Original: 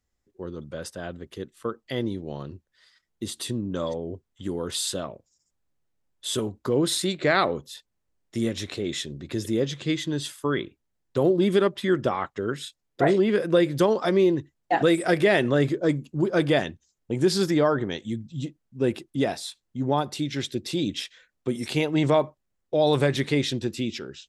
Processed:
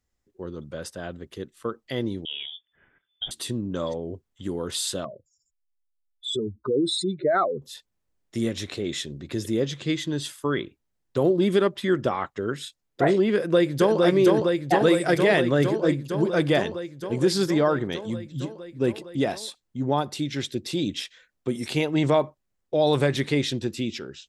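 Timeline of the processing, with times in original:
2.25–3.31 inverted band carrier 3500 Hz
5.05–7.62 spectral contrast raised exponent 2.6
13.35–14.02 echo throw 0.46 s, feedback 80%, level -2 dB

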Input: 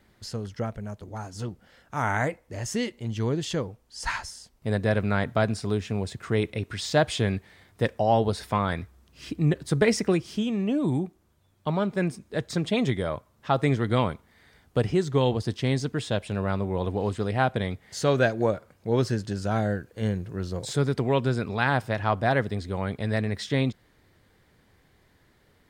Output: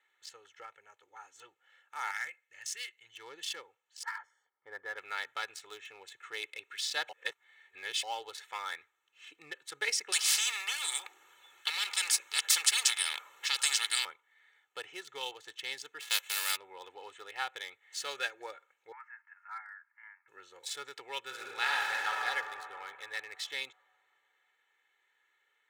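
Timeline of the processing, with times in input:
2.11–3.14 band shelf 510 Hz -10.5 dB 2.6 oct
4.03–4.98 polynomial smoothing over 41 samples
7.09–8.03 reverse
10.12–14.05 spectral compressor 10:1
16–16.55 spectral whitening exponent 0.3
18.92–20.28 elliptic band-pass 910–2100 Hz
21.23–22.2 reverb throw, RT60 2.9 s, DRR -3.5 dB
whole clip: Wiener smoothing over 9 samples; Bessel high-pass 2600 Hz, order 2; comb 2.3 ms, depth 83%

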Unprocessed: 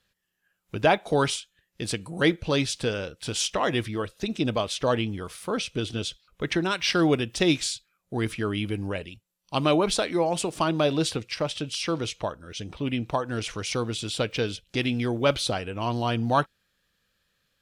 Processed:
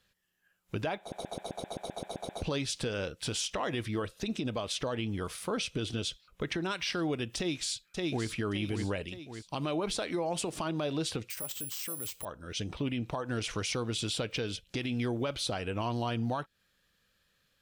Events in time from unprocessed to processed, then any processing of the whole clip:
0.99 stutter in place 0.13 s, 11 plays
7.37–8.28 echo throw 0.57 s, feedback 40%, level -9.5 dB
11.3–12.25 careless resampling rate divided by 4×, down none, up zero stuff
whole clip: compressor, threshold -28 dBFS; limiter -23.5 dBFS

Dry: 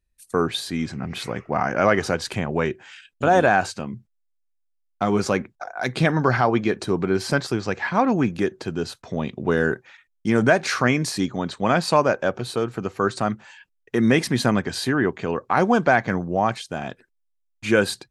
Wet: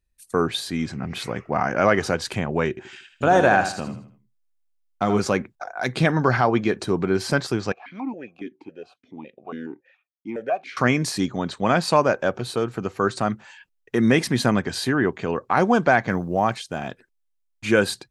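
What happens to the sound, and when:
2.69–5.19 feedback echo 79 ms, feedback 36%, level -9 dB
7.72–10.77 vowel sequencer 7.2 Hz
16.1–17.66 short-mantissa float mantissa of 6-bit

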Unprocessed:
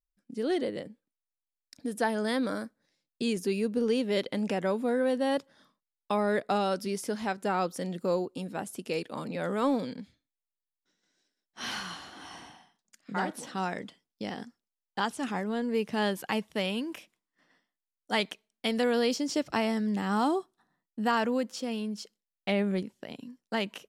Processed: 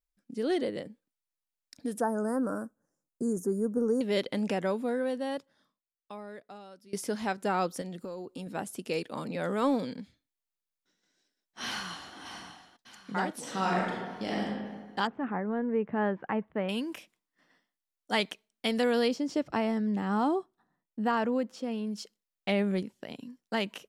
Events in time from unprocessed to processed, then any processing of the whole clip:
2–4.01 elliptic band-stop 1400–6500 Hz, stop band 60 dB
4.53–6.93 fade out quadratic, to -22 dB
7.81–8.47 compressor 16:1, threshold -35 dBFS
11.65–12.16 echo throw 0.6 s, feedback 55%, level -12.5 dB
13.4–14.44 reverb throw, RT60 1.5 s, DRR -4 dB
15.07–16.69 LPF 1800 Hz 24 dB/oct
19.08–21.87 high shelf 2600 Hz -11.5 dB

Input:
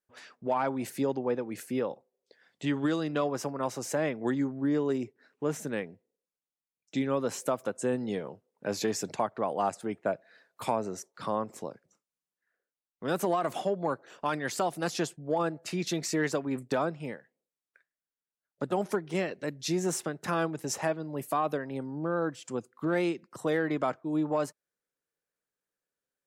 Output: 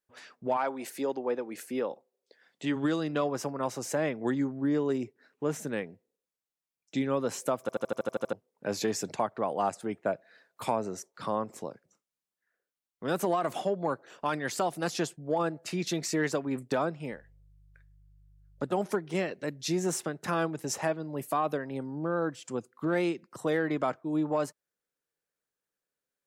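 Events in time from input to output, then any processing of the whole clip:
0.56–2.75 HPF 390 Hz -> 160 Hz
7.61 stutter in place 0.08 s, 9 plays
17.1–18.65 buzz 50 Hz, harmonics 3, -59 dBFS -7 dB/oct

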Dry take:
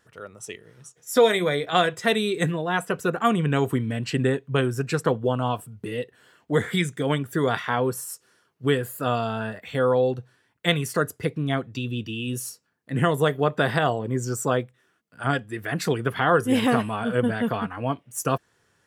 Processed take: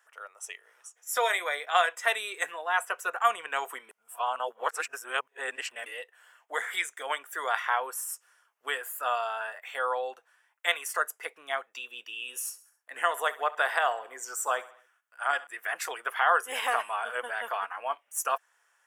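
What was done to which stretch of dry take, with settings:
3.89–5.86 reverse
12.18–15.47 feedback echo 67 ms, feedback 50%, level -18 dB
whole clip: HPF 730 Hz 24 dB/oct; bell 4200 Hz -11.5 dB 0.55 oct

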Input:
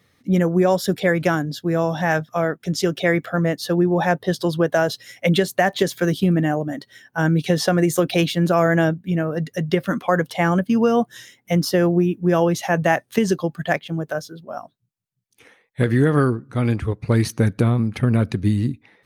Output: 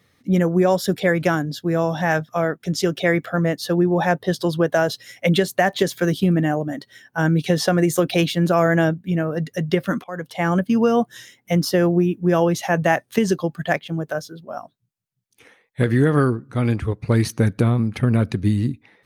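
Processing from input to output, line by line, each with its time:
10.04–10.57 fade in, from -22 dB

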